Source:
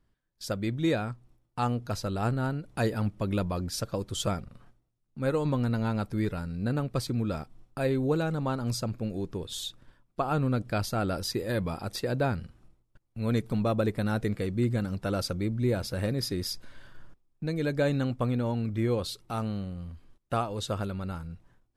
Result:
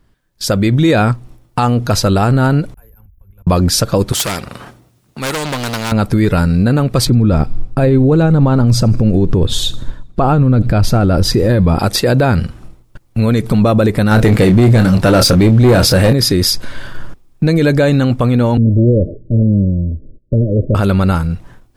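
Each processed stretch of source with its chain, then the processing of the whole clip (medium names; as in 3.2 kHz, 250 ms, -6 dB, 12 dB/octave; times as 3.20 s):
2.74–3.47 s: inverse Chebyshev band-stop 110–9400 Hz + compression 10:1, threshold -54 dBFS + comb of notches 630 Hz
4.12–5.92 s: high-pass 91 Hz + hard clipper -27 dBFS + spectrum-flattening compressor 2:1
7.05–11.79 s: tilt EQ -2.5 dB/octave + feedback echo behind a high-pass 79 ms, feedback 44%, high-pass 3.4 kHz, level -19 dB
14.11–16.13 s: doubling 27 ms -9.5 dB + waveshaping leveller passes 2
18.57–20.75 s: comb filter that takes the minimum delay 0.58 ms + Chebyshev low-pass 630 Hz, order 10
whole clip: level rider gain up to 7 dB; loudness maximiser +18.5 dB; trim -2.5 dB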